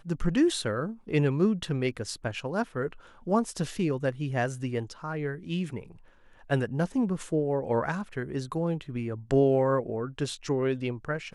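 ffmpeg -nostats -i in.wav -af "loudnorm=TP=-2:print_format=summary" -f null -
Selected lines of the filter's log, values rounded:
Input Integrated:    -29.1 LUFS
Input True Peak:     -12.7 dBTP
Input LRA:             2.6 LU
Input Threshold:     -39.3 LUFS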